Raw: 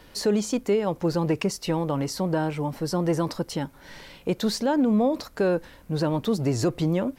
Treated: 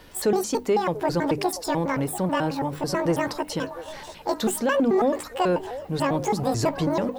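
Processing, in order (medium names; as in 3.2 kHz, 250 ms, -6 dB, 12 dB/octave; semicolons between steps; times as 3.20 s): pitch shift switched off and on +10.5 st, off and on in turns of 109 ms; hum notches 50/100/150/200/250/300 Hz; in parallel at -11 dB: saturation -24.5 dBFS, distortion -10 dB; on the sum: repeats whose band climbs or falls 689 ms, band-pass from 610 Hz, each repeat 0.7 oct, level -10.5 dB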